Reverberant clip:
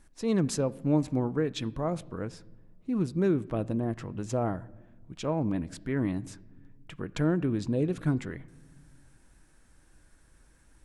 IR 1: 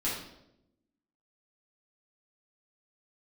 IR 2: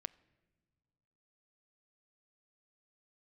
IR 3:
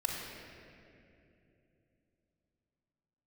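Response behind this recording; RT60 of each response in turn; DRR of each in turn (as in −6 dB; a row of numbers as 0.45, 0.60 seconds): 2; 0.85 s, non-exponential decay, 2.9 s; −9.0, 15.0, −2.0 decibels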